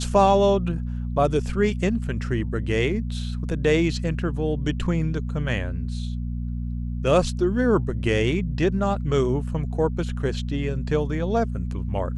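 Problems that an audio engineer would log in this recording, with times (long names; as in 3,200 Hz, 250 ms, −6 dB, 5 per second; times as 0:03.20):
mains hum 60 Hz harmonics 4 −28 dBFS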